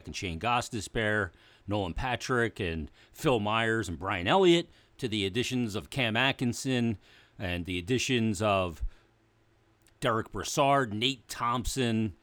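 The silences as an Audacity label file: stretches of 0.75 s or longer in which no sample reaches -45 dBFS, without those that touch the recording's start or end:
8.930000	9.870000	silence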